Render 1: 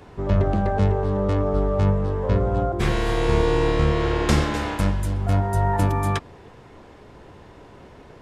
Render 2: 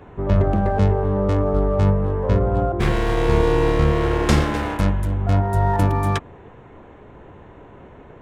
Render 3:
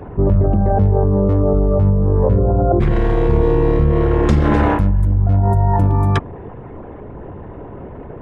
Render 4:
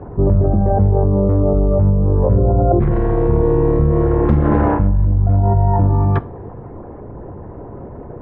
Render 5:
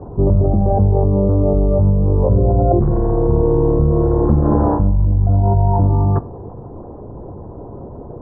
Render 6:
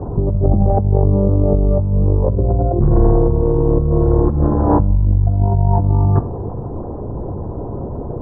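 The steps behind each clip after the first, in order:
local Wiener filter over 9 samples; trim +2.5 dB
resonances exaggerated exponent 1.5; in parallel at -1 dB: compressor with a negative ratio -23 dBFS, ratio -0.5; on the sum: trim +2 dB
low-pass 1.3 kHz 12 dB/octave; reverberation, pre-delay 3 ms, DRR 14 dB
low-pass 1.1 kHz 24 dB/octave
compressor with a negative ratio -16 dBFS, ratio -0.5; bass shelf 180 Hz +4 dB; trim +1.5 dB

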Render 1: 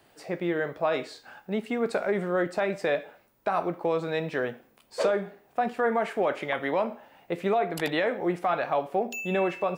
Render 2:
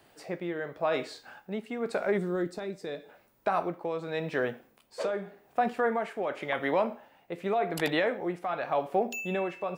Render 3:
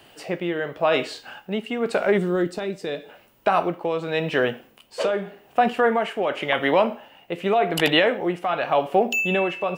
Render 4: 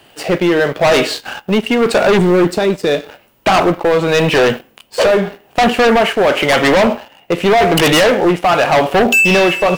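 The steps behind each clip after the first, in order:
time-frequency box 2.18–3.09 s, 480–3400 Hz -9 dB; tremolo 0.89 Hz, depth 54%
peaking EQ 2.9 kHz +11.5 dB 0.28 oct; trim +8 dB
waveshaping leveller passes 2; in parallel at -10.5 dB: sine folder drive 11 dB, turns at -3.5 dBFS

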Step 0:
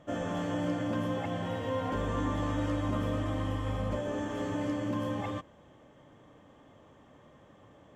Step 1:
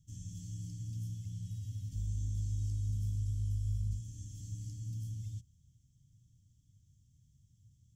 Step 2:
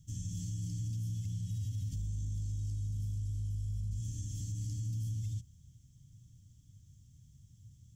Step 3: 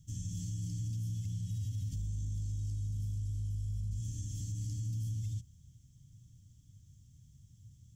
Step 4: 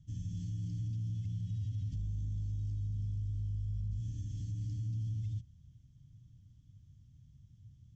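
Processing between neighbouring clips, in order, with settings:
Chebyshev band-stop 120–5600 Hz, order 3; trim +1 dB
peak limiter -38.5 dBFS, peak gain reduction 11.5 dB; trim +7.5 dB
no audible change
distance through air 190 m

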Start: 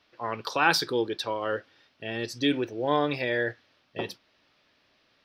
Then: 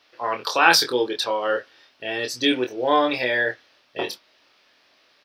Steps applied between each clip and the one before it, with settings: tone controls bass -13 dB, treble +3 dB; doubling 24 ms -4.5 dB; trim +5.5 dB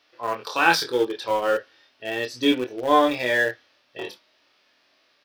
harmonic-percussive split percussive -12 dB; in parallel at -10.5 dB: small samples zeroed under -22.5 dBFS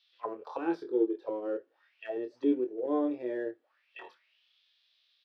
auto-wah 350–3700 Hz, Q 4.5, down, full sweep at -24 dBFS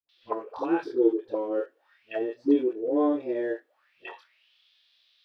phase dispersion highs, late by 91 ms, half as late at 420 Hz; trim +5.5 dB

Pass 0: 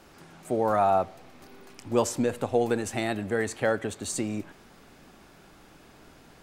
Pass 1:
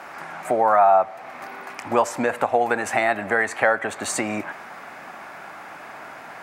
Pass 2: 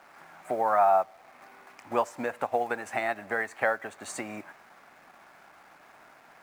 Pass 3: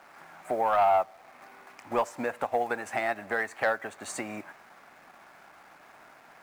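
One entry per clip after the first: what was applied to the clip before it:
Bessel high-pass 180 Hz, order 2; high-order bell 1.2 kHz +13.5 dB 2.3 oct; compression 2:1, threshold -28 dBFS, peak gain reduction 11.5 dB; trim +6 dB
in parallel at -9 dB: word length cut 6-bit, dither none; on the sum: upward expansion 1.5:1, over -30 dBFS; trim -8.5 dB
saturation -16.5 dBFS, distortion -18 dB; trim +1 dB

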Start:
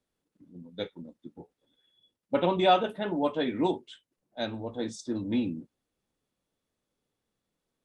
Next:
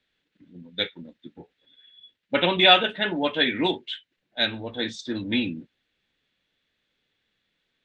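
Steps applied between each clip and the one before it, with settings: low-pass 7 kHz 24 dB/octave; high-order bell 2.5 kHz +14 dB; trim +2 dB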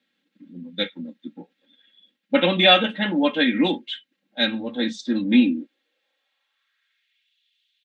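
high-pass sweep 190 Hz -> 3.1 kHz, 5.29–7.35 s; comb 3.7 ms, depth 77%; trim -1 dB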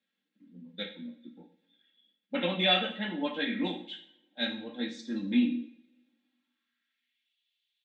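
flange 0.58 Hz, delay 9.5 ms, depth 9.1 ms, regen -52%; two-slope reverb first 0.54 s, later 1.8 s, from -25 dB, DRR 4.5 dB; trim -8 dB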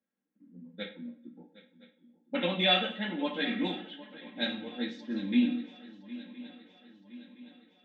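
level-controlled noise filter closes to 1.1 kHz, open at -26 dBFS; shuffle delay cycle 1016 ms, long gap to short 3:1, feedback 51%, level -17.5 dB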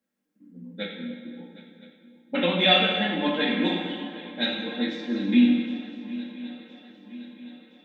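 plate-style reverb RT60 2 s, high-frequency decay 0.8×, DRR 1.5 dB; trim +5 dB

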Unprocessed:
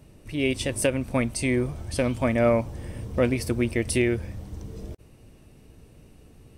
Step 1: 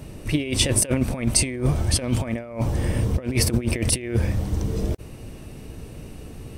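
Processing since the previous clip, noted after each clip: compressor with a negative ratio -29 dBFS, ratio -0.5; trim +8 dB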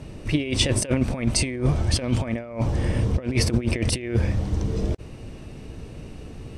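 low-pass 6.6 kHz 12 dB/octave

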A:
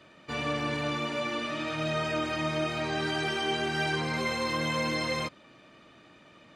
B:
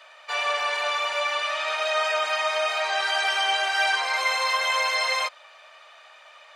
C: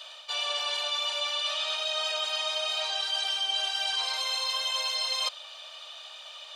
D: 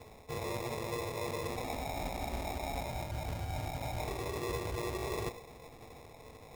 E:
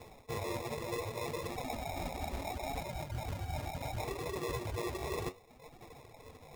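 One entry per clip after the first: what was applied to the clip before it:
steep high-pass 620 Hz 36 dB/octave; trim +8.5 dB
resonant high shelf 2.6 kHz +7.5 dB, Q 3; reverse; compression 6:1, threshold -28 dBFS, peak gain reduction 15.5 dB; reverse
reverberation RT60 0.55 s, pre-delay 3 ms, DRR 3.5 dB; sample-and-hold 29×; trim -8.5 dB
reverb removal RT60 1 s; flange 0.69 Hz, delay 5.1 ms, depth 8.6 ms, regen +63%; trim +5.5 dB

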